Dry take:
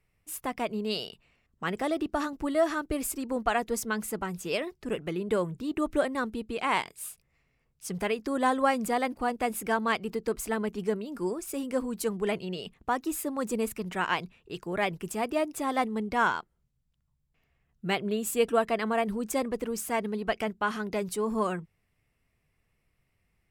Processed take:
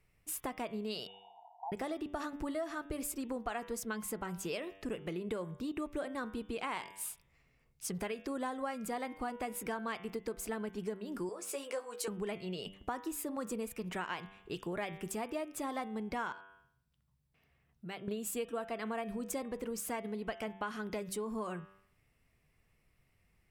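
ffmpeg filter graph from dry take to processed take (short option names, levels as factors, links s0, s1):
-filter_complex "[0:a]asettb=1/sr,asplit=3[s0][s1][s2];[s0]atrim=end=1.074[s3];[s1]atrim=start=1.07:end=1.72,asetpts=PTS-STARTPTS,afade=t=in:d=0.004:c=qsin,afade=t=out:st=0.646:d=0.004:c=qsin,aeval=exprs='val(0)+0.5*0.0141*sgn(val(0))':c=same,asuperpass=centerf=810:order=12:qfactor=2.9[s4];[s2]atrim=start=1.716[s5];[s3][s4]acrossfade=d=0.004:c1=hsin:c2=qsin[s6];[s6][s5]acrossfade=d=0.004:c1=qsin:c2=hsin,asettb=1/sr,asplit=3[s7][s8][s9];[s7]atrim=end=11.294[s10];[s8]atrim=start=11.29:end=12.08,asetpts=PTS-STARTPTS,afade=t=in:d=0.004:c=qsin,afade=t=out:st=0.786:d=0.004:c=qsin,highpass=f=440:w=0.5412,highpass=f=440:w=1.3066,equalizer=f=14000:w=1.6:g=-11.5,asplit=2[s11][s12];[s12]adelay=14,volume=0.562[s13];[s11][s13]amix=inputs=2:normalize=0,atrim=end_sample=34839[s14];[s9]atrim=start=12.076[s15];[s10][s14]acrossfade=d=0.004:c1=hsin:c2=qsin[s16];[s16][s15]acrossfade=d=0.004:c1=qsin:c2=hsin,asettb=1/sr,asplit=3[s17][s18][s19];[s17]atrim=end=16.324[s20];[s18]atrim=start=16.32:end=18.08,asetpts=PTS-STARTPTS,afade=t=in:d=0.004:c=qsin,afade=t=out:st=1.756:d=0.004:c=qsin,highpass=63,bandreject=f=6900:w=6.5,acompressor=threshold=0.002:ratio=2:attack=3.2:release=140:knee=1:detection=peak[s21];[s19]atrim=start=18.076[s22];[s20][s21]acrossfade=d=0.004:c1=hsin:c2=qsin[s23];[s23][s22]acrossfade=d=0.004:c1=qsin:c2=hsin,bandreject=f=97.14:t=h:w=4,bandreject=f=194.28:t=h:w=4,bandreject=f=291.42:t=h:w=4,bandreject=f=388.56:t=h:w=4,bandreject=f=485.7:t=h:w=4,bandreject=f=582.84:t=h:w=4,bandreject=f=679.98:t=h:w=4,bandreject=f=777.12:t=h:w=4,bandreject=f=874.26:t=h:w=4,bandreject=f=971.4:t=h:w=4,bandreject=f=1068.54:t=h:w=4,bandreject=f=1165.68:t=h:w=4,bandreject=f=1262.82:t=h:w=4,bandreject=f=1359.96:t=h:w=4,bandreject=f=1457.1:t=h:w=4,bandreject=f=1554.24:t=h:w=4,bandreject=f=1651.38:t=h:w=4,bandreject=f=1748.52:t=h:w=4,bandreject=f=1845.66:t=h:w=4,bandreject=f=1942.8:t=h:w=4,bandreject=f=2039.94:t=h:w=4,bandreject=f=2137.08:t=h:w=4,bandreject=f=2234.22:t=h:w=4,bandreject=f=2331.36:t=h:w=4,bandreject=f=2428.5:t=h:w=4,bandreject=f=2525.64:t=h:w=4,bandreject=f=2622.78:t=h:w=4,bandreject=f=2719.92:t=h:w=4,bandreject=f=2817.06:t=h:w=4,bandreject=f=2914.2:t=h:w=4,bandreject=f=3011.34:t=h:w=4,bandreject=f=3108.48:t=h:w=4,bandreject=f=3205.62:t=h:w=4,bandreject=f=3302.76:t=h:w=4,bandreject=f=3399.9:t=h:w=4,bandreject=f=3497.04:t=h:w=4,bandreject=f=3594.18:t=h:w=4,bandreject=f=3691.32:t=h:w=4,acompressor=threshold=0.0126:ratio=5,volume=1.19"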